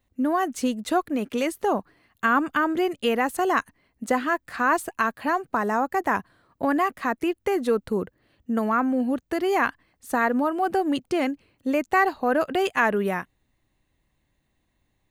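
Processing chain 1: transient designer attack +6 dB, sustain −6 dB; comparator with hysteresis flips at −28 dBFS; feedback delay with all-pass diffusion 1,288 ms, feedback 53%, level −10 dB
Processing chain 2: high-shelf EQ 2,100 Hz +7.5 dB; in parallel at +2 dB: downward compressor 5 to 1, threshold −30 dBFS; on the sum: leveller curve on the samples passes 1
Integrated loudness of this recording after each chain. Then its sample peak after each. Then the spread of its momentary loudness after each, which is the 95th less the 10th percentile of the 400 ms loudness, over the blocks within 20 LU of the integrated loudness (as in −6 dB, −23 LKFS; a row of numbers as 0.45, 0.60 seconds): −26.5, −17.5 LKFS; −14.0, −3.0 dBFS; 10, 7 LU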